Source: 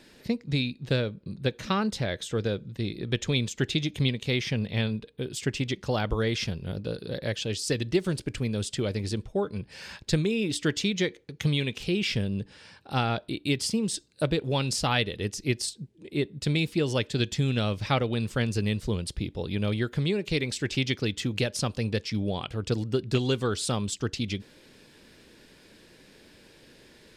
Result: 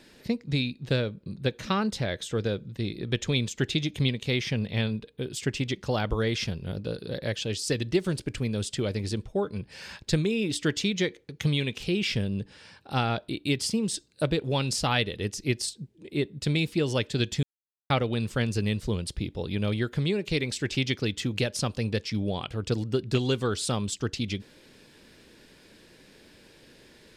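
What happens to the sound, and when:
0:17.43–0:17.90: silence

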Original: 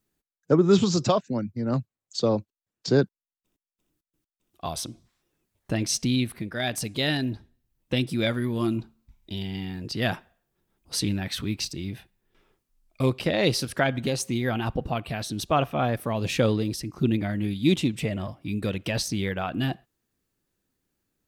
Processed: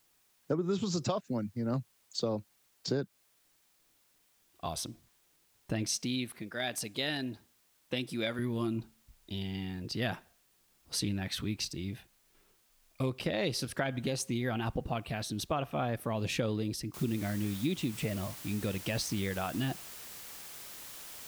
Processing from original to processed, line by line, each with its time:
0:05.89–0:08.39: high-pass filter 290 Hz 6 dB per octave
0:16.94: noise floor change −65 dB −42 dB
whole clip: downward compressor, threshold −23 dBFS; level −5 dB

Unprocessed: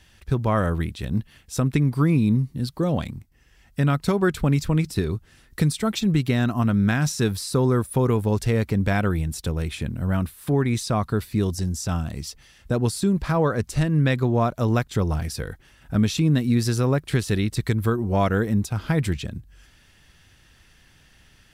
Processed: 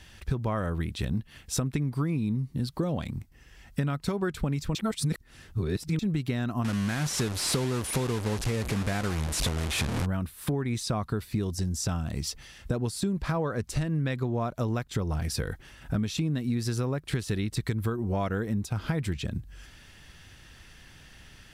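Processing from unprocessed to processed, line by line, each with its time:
0:04.75–0:05.99: reverse
0:06.64–0:10.06: linear delta modulator 64 kbit/s, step −21 dBFS
whole clip: high-shelf EQ 11,000 Hz −3.5 dB; downward compressor 6 to 1, threshold −30 dBFS; level +4 dB

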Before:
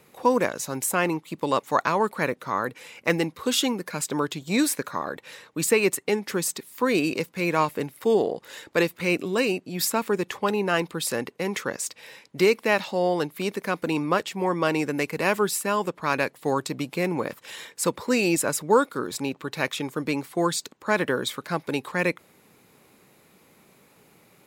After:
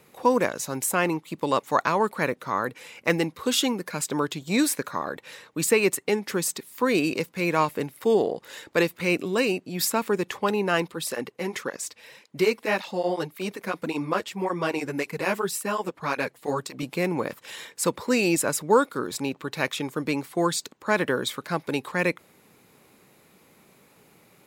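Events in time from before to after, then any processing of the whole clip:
0:10.88–0:16.83: through-zero flanger with one copy inverted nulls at 1.8 Hz, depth 7.5 ms

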